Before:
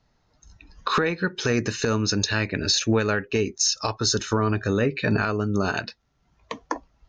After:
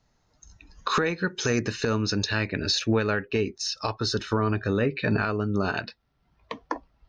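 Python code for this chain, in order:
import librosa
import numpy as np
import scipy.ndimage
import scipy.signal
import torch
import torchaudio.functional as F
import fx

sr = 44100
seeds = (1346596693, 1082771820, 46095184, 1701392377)

y = fx.peak_eq(x, sr, hz=6700.0, db=fx.steps((0.0, 6.5), (1.59, -7.0), (2.81, -13.5)), octaves=0.4)
y = y * librosa.db_to_amplitude(-2.0)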